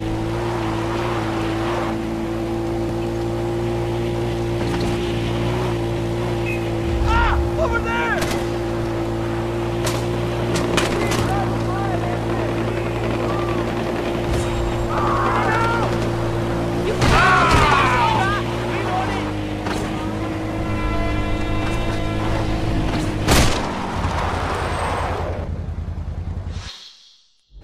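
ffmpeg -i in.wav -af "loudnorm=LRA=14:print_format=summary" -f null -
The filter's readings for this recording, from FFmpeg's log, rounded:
Input Integrated:    -21.3 LUFS
Input True Peak:      -1.7 dBTP
Input LRA:             7.9 LU
Input Threshold:     -31.5 LUFS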